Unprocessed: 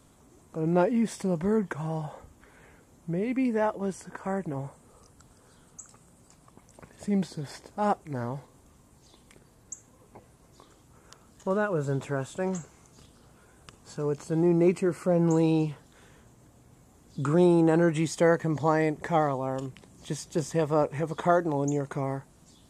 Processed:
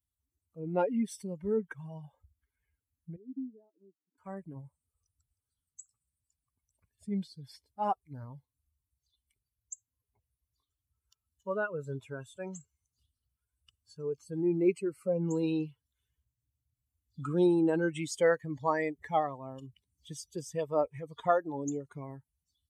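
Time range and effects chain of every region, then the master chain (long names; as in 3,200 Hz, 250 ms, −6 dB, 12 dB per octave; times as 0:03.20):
0:03.16–0:04.18: downward compressor 2 to 1, threshold −28 dBFS + resonant band-pass 300 Hz, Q 3.5
whole clip: spectral dynamics exaggerated over time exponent 2; high-pass filter 63 Hz; dynamic equaliser 140 Hz, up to −7 dB, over −43 dBFS, Q 1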